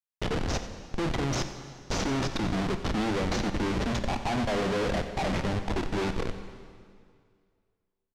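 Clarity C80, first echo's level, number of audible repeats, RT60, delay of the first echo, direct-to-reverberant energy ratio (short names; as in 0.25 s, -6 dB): 9.5 dB, -15.5 dB, 1, 2.1 s, 90 ms, 7.5 dB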